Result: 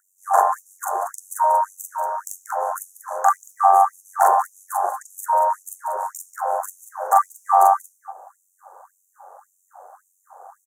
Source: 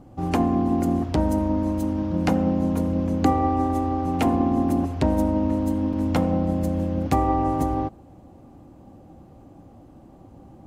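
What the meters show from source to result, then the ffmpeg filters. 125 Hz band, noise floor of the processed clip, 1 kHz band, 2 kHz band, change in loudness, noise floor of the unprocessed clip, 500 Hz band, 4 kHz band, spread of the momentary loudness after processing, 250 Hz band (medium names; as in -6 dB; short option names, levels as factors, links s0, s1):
under -40 dB, -67 dBFS, +10.0 dB, +4.5 dB, +2.0 dB, -48 dBFS, 0.0 dB, under -15 dB, 15 LU, under -35 dB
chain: -filter_complex "[0:a]lowshelf=f=540:t=q:w=1.5:g=-13.5,acrossover=split=140|730|5600[s0][s1][s2][s3];[s1]asoftclip=type=tanh:threshold=0.0266[s4];[s0][s4][s2][s3]amix=inputs=4:normalize=0,tremolo=f=93:d=0.75,volume=10.6,asoftclip=hard,volume=0.0944,asuperstop=centerf=3300:order=12:qfactor=0.67,aecho=1:1:40.82|186.6|230.3:1|0.282|0.316,alimiter=level_in=5.31:limit=0.891:release=50:level=0:latency=1,afftfilt=real='re*gte(b*sr/1024,380*pow(4100/380,0.5+0.5*sin(2*PI*1.8*pts/sr)))':imag='im*gte(b*sr/1024,380*pow(4100/380,0.5+0.5*sin(2*PI*1.8*pts/sr)))':win_size=1024:overlap=0.75,volume=0.891"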